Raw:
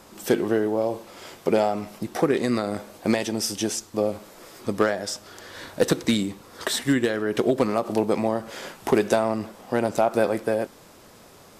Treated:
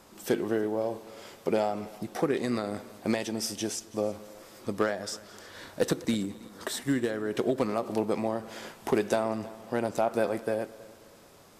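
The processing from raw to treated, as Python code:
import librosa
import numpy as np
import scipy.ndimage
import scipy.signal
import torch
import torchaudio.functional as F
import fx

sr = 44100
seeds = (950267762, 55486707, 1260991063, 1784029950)

y = fx.peak_eq(x, sr, hz=3100.0, db=-4.5, octaves=1.9, at=(5.91, 7.3))
y = fx.echo_heads(y, sr, ms=108, heads='second and third', feedback_pct=41, wet_db=-22.0)
y = F.gain(torch.from_numpy(y), -6.0).numpy()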